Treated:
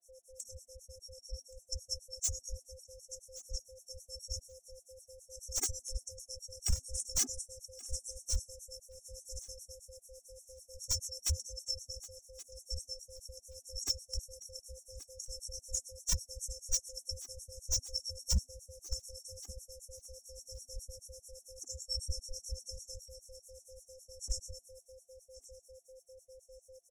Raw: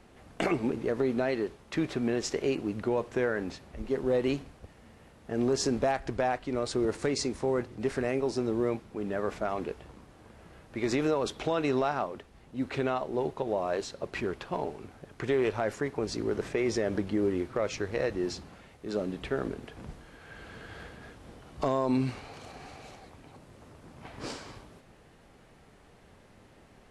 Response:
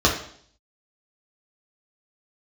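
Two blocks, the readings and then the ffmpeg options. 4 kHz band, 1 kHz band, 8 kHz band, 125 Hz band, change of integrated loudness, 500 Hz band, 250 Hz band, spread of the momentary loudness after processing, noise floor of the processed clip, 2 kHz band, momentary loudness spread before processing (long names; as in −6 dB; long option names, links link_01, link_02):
+1.5 dB, −29.0 dB, +8.5 dB, −7.0 dB, −9.0 dB, −23.0 dB, −29.5 dB, 20 LU, −68 dBFS, −23.5 dB, 18 LU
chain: -filter_complex "[0:a]afftfilt=real='real(if(lt(b,272),68*(eq(floor(b/68),0)*3+eq(floor(b/68),1)*0+eq(floor(b/68),2)*1+eq(floor(b/68),3)*2)+mod(b,68),b),0)':imag='imag(if(lt(b,272),68*(eq(floor(b/68),0)*3+eq(floor(b/68),1)*0+eq(floor(b/68),2)*1+eq(floor(b/68),3)*2)+mod(b,68),b),0)':win_size=2048:overlap=0.75,afftfilt=real='re*(1-between(b*sr/4096,140,5400))':imag='im*(1-between(b*sr/4096,140,5400))':win_size=4096:overlap=0.75,lowshelf=frequency=150:gain=10,aecho=1:1:2.4:0.33,bandreject=frequency=398.5:width_type=h:width=4,bandreject=frequency=797:width_type=h:width=4,bandreject=frequency=1195.5:width_type=h:width=4,bandreject=frequency=1594:width_type=h:width=4,bandreject=frequency=1992.5:width_type=h:width=4,bandreject=frequency=2391:width_type=h:width=4,bandreject=frequency=2789.5:width_type=h:width=4,bandreject=frequency=3188:width_type=h:width=4,bandreject=frequency=3586.5:width_type=h:width=4,bandreject=frequency=3985:width_type=h:width=4,bandreject=frequency=4383.5:width_type=h:width=4,bandreject=frequency=4782:width_type=h:width=4,bandreject=frequency=5180.5:width_type=h:width=4,bandreject=frequency=5579:width_type=h:width=4,bandreject=frequency=5977.5:width_type=h:width=4,bandreject=frequency=6376:width_type=h:width=4,bandreject=frequency=6774.5:width_type=h:width=4,bandreject=frequency=7173:width_type=h:width=4,bandreject=frequency=7571.5:width_type=h:width=4,bandreject=frequency=7970:width_type=h:width=4,bandreject=frequency=8368.5:width_type=h:width=4,bandreject=frequency=8767:width_type=h:width=4,bandreject=frequency=9165.5:width_type=h:width=4,bandreject=frequency=9564:width_type=h:width=4,bandreject=frequency=9962.5:width_type=h:width=4,bandreject=frequency=10361:width_type=h:width=4,bandreject=frequency=10759.5:width_type=h:width=4,bandreject=frequency=11158:width_type=h:width=4,bandreject=frequency=11556.5:width_type=h:width=4,bandreject=frequency=11955:width_type=h:width=4,bandreject=frequency=12353.5:width_type=h:width=4,bandreject=frequency=12752:width_type=h:width=4,bandreject=frequency=13150.5:width_type=h:width=4,bandreject=frequency=13549:width_type=h:width=4,bandreject=frequency=13947.5:width_type=h:width=4,bandreject=frequency=14346:width_type=h:width=4,bandreject=frequency=14744.5:width_type=h:width=4,bandreject=frequency=15143:width_type=h:width=4,bandreject=frequency=15541.5:width_type=h:width=4,dynaudnorm=framelen=540:gausssize=17:maxgain=7dB,afreqshift=-88,acrossover=split=1100[link_01][link_02];[link_01]aeval=exprs='val(0)*(1-1/2+1/2*cos(2*PI*9.1*n/s))':channel_layout=same[link_03];[link_02]aeval=exprs='val(0)*(1-1/2-1/2*cos(2*PI*9.1*n/s))':channel_layout=same[link_04];[link_03][link_04]amix=inputs=2:normalize=0,aeval=exprs='val(0)+0.000398*sin(2*PI*520*n/s)':channel_layout=same,asoftclip=type=hard:threshold=-39dB,aecho=1:1:1125|2250:0.15|0.0239,afftfilt=real='re*gt(sin(2*PI*5*pts/sr)*(1-2*mod(floor(b*sr/1024/220),2)),0)':imag='im*gt(sin(2*PI*5*pts/sr)*(1-2*mod(floor(b*sr/1024/220),2)),0)':win_size=1024:overlap=0.75,volume=15dB"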